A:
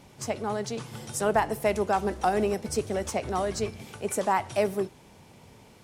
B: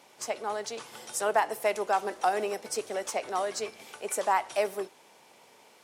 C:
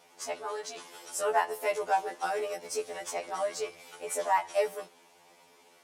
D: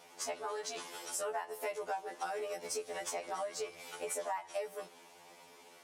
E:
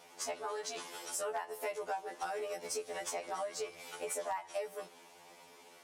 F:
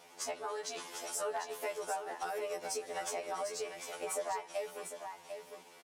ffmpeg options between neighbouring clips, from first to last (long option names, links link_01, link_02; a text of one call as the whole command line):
ffmpeg -i in.wav -af "highpass=500" out.wav
ffmpeg -i in.wav -af "afftfilt=real='re*2*eq(mod(b,4),0)':imag='im*2*eq(mod(b,4),0)':win_size=2048:overlap=0.75" out.wav
ffmpeg -i in.wav -af "acompressor=threshold=-38dB:ratio=6,volume=2dB" out.wav
ffmpeg -i in.wav -af "aeval=exprs='0.0376*(abs(mod(val(0)/0.0376+3,4)-2)-1)':channel_layout=same" out.wav
ffmpeg -i in.wav -af "aecho=1:1:749:0.422" out.wav